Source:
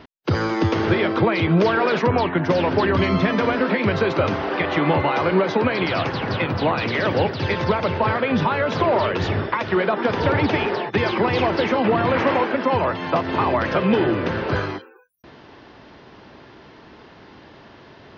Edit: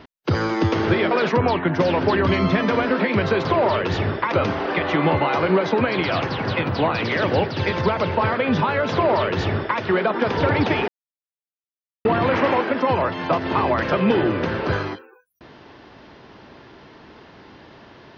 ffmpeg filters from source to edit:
-filter_complex "[0:a]asplit=6[a][b][c][d][e][f];[a]atrim=end=1.112[g];[b]atrim=start=1.808:end=4.152[h];[c]atrim=start=8.748:end=9.622[i];[d]atrim=start=4.148:end=10.71,asetpts=PTS-STARTPTS,afade=t=out:st=6.558:d=0.004:c=hsin[j];[e]atrim=start=10.71:end=11.88,asetpts=PTS-STARTPTS,volume=0[k];[f]atrim=start=11.88,asetpts=PTS-STARTPTS,afade=t=in:d=0.004:c=hsin[l];[g][h]acrossfade=d=0.004:c1=hsin:c2=hsin[m];[m][i]acrossfade=d=0.004:c1=hsin:c2=hsin[n];[j][k][l]concat=n=3:v=0:a=1[o];[n][o]acrossfade=d=0.004:c1=hsin:c2=hsin"

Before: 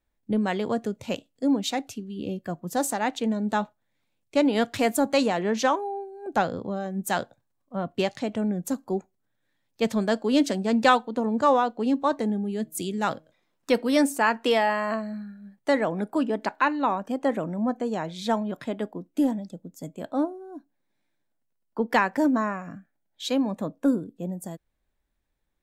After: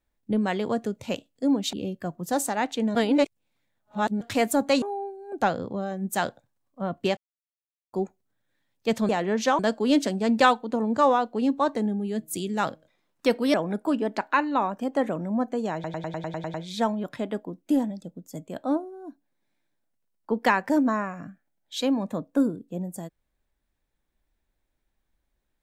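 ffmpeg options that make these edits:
-filter_complex "[0:a]asplit=18[a][b][c][d][e][f][g][h][i][j][k][l][m][n][o][p][q][r];[a]atrim=end=1.732[s];[b]atrim=start=2.168:end=3.392[t];[c]atrim=start=3.388:end=4.652,asetpts=PTS-STARTPTS,areverse[u];[d]atrim=start=4.648:end=5.262[v];[e]atrim=start=5.758:end=8.11,asetpts=PTS-STARTPTS,afade=t=out:st=2.348:d=0.004:c=hsin[w];[f]atrim=start=8.11:end=8.87,asetpts=PTS-STARTPTS,volume=0[x];[g]atrim=start=8.87:end=10.032,asetpts=PTS-STARTPTS,afade=t=in:d=0.004:c=hsin[y];[h]atrim=start=5.258:end=5.762[z];[i]atrim=start=10.028:end=13.982[aa];[j]atrim=start=15.818:end=18.122[ab];[k]atrim=start=18.018:end=18.122[ac];[l]atrim=start=18.018:end=18.122[ad];[m]atrim=start=18.018:end=18.122[ae];[n]atrim=start=18.018:end=18.122[af];[o]atrim=start=18.018:end=18.122[ag];[p]atrim=start=18.018:end=18.122[ah];[q]atrim=start=18.018:end=18.122[ai];[r]atrim=start=18.018[aj];[s][t]acrossfade=d=0.004:c1=hsin:c2=hsin[ak];[ak][u]acrossfade=d=0.004:c1=hsin:c2=hsin[al];[al][v]acrossfade=d=0.004:c1=hsin:c2=hsin[am];[w][x][y]concat=n=3:v=0:a=1[an];[am][an]acrossfade=d=0.004:c1=hsin:c2=hsin[ao];[ao][z]acrossfade=d=0.004:c1=hsin:c2=hsin[ap];[ap][aa]acrossfade=d=0.004:c1=hsin:c2=hsin[aq];[aq][ab]acrossfade=d=0.004:c1=hsin:c2=hsin[ar];[ar][ac]acrossfade=d=0.004:c1=hsin:c2=hsin[as];[as][ad]acrossfade=d=0.004:c1=hsin:c2=hsin[at];[at][ae]acrossfade=d=0.004:c1=hsin:c2=hsin[au];[au][af]acrossfade=d=0.004:c1=hsin:c2=hsin[av];[av][ag]acrossfade=d=0.004:c1=hsin:c2=hsin[aw];[aw][ah]acrossfade=d=0.004:c1=hsin:c2=hsin[ax];[ax][ai]acrossfade=d=0.004:c1=hsin:c2=hsin[ay];[ay][aj]acrossfade=d=0.004:c1=hsin:c2=hsin"

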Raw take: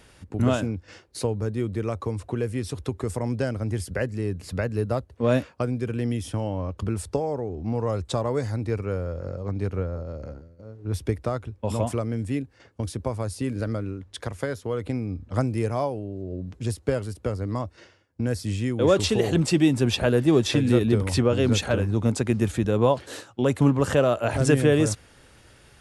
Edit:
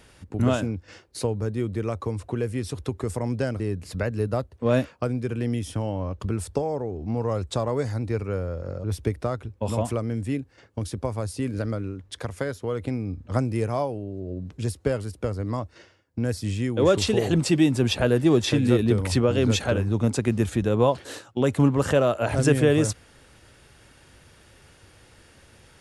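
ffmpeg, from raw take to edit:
-filter_complex "[0:a]asplit=3[a][b][c];[a]atrim=end=3.602[d];[b]atrim=start=4.178:end=9.422[e];[c]atrim=start=10.858[f];[d][e]acrossfade=d=0.004:c1=hsin:c2=hsin[g];[g][f]acrossfade=d=0.004:c1=hsin:c2=hsin"

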